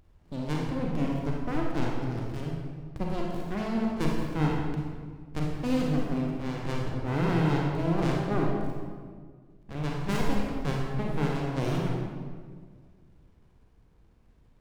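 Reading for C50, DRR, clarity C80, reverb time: 0.0 dB, -2.0 dB, 2.0 dB, 1.8 s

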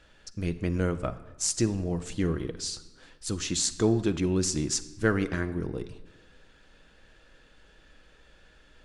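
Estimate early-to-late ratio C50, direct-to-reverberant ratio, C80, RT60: 14.5 dB, 10.0 dB, 16.0 dB, 1.2 s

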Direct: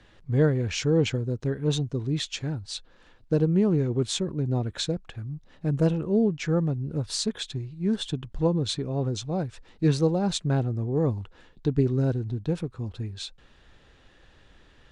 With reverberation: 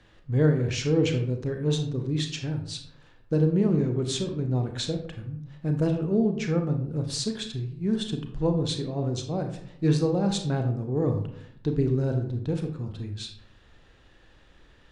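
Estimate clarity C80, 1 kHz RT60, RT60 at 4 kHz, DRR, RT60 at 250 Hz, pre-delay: 11.0 dB, 0.60 s, 0.35 s, 4.5 dB, 0.85 s, 29 ms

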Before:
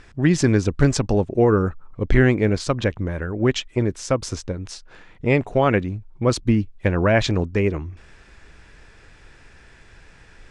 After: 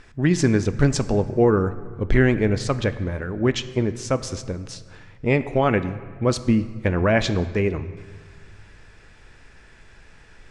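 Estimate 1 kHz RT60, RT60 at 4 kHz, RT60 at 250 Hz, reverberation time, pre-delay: 1.6 s, 1.2 s, 2.0 s, 1.6 s, 5 ms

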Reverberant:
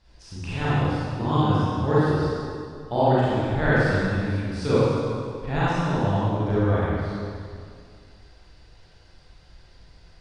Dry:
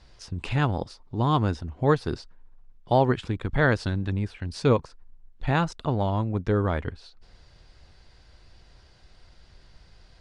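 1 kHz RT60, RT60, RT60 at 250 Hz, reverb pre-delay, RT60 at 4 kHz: 2.1 s, 2.2 s, 2.3 s, 32 ms, 1.9 s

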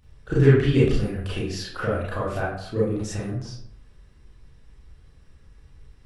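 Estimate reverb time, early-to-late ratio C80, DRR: 0.65 s, 6.0 dB, -8.5 dB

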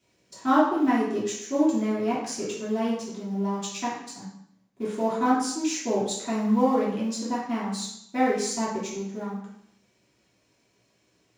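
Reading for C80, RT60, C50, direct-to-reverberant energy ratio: 5.5 dB, 0.70 s, 2.5 dB, -8.0 dB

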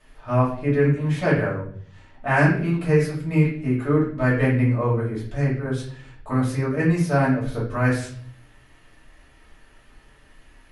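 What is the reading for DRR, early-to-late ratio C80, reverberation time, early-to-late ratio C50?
-7.0 dB, 9.5 dB, 0.50 s, 5.5 dB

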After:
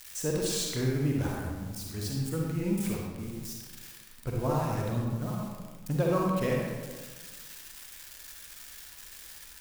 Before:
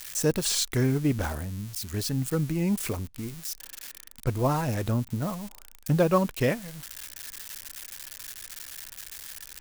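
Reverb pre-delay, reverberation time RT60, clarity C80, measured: 39 ms, 1.5 s, 2.0 dB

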